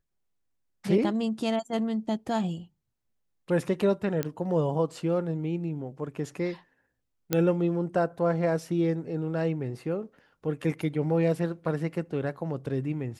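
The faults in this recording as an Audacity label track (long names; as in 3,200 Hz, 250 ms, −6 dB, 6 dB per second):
4.230000	4.230000	click −14 dBFS
7.330000	7.330000	click −9 dBFS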